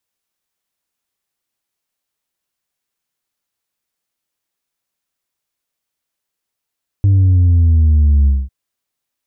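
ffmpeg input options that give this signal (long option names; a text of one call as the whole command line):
ffmpeg -f lavfi -i "aevalsrc='0.398*clip((1.45-t)/0.22,0,1)*tanh(1.33*sin(2*PI*100*1.45/log(65/100)*(exp(log(65/100)*t/1.45)-1)))/tanh(1.33)':duration=1.45:sample_rate=44100" out.wav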